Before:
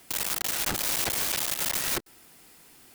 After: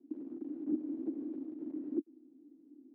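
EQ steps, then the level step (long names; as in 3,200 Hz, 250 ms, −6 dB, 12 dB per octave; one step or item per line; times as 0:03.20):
flat-topped band-pass 290 Hz, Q 4.6
+12.0 dB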